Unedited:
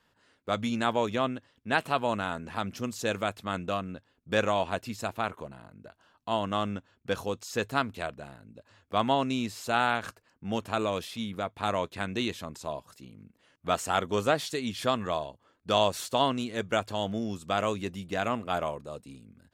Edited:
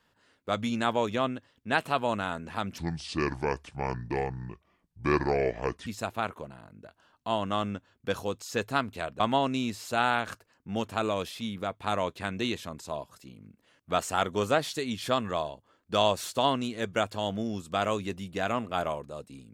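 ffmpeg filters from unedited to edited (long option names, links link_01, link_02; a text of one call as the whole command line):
ffmpeg -i in.wav -filter_complex "[0:a]asplit=4[link_01][link_02][link_03][link_04];[link_01]atrim=end=2.784[link_05];[link_02]atrim=start=2.78:end=4.88,asetpts=PTS-STARTPTS,asetrate=29988,aresample=44100,atrim=end_sample=136191,asetpts=PTS-STARTPTS[link_06];[link_03]atrim=start=4.876:end=8.212[link_07];[link_04]atrim=start=8.958[link_08];[link_05][link_06]acrossfade=duration=0.004:curve1=hsin:curve2=hsin[link_09];[link_09][link_07]acrossfade=duration=0.004:curve1=hsin:curve2=hsin[link_10];[link_10][link_08]acrossfade=duration=0.004:curve1=hsin:curve2=hsin" out.wav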